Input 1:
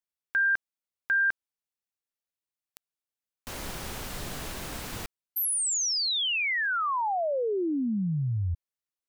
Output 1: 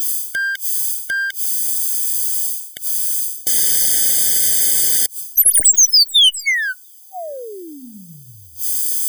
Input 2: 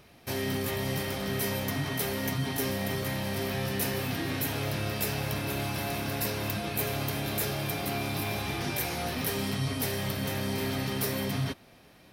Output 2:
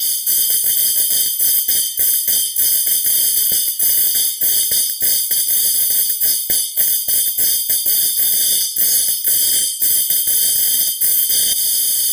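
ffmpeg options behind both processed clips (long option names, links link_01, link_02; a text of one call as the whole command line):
ffmpeg -i in.wav -filter_complex "[0:a]aexciter=amount=9.1:drive=9.4:freq=2700,asplit=2[link_01][link_02];[link_02]acompressor=mode=upward:threshold=-12dB:ratio=4:attack=6:release=82:knee=2.83:detection=peak,volume=1.5dB[link_03];[link_01][link_03]amix=inputs=2:normalize=0,aderivative,bandreject=frequency=45.12:width_type=h:width=4,bandreject=frequency=90.24:width_type=h:width=4,bandreject=frequency=135.36:width_type=h:width=4,bandreject=frequency=180.48:width_type=h:width=4,bandreject=frequency=225.6:width_type=h:width=4,bandreject=frequency=270.72:width_type=h:width=4,areverse,acompressor=threshold=-11dB:ratio=16:attack=1.2:release=182:knee=6:detection=rms,areverse,adynamicequalizer=threshold=0.0251:dfrequency=9200:dqfactor=2.5:tfrequency=9200:tqfactor=2.5:attack=5:release=100:ratio=0.438:range=2:mode=boostabove:tftype=bell,aeval=exprs='1.19*sin(PI/2*3.98*val(0)/1.19)':channel_layout=same,afftfilt=real='re*eq(mod(floor(b*sr/1024/740),2),0)':imag='im*eq(mod(floor(b*sr/1024/740),2),0)':win_size=1024:overlap=0.75,volume=-8.5dB" out.wav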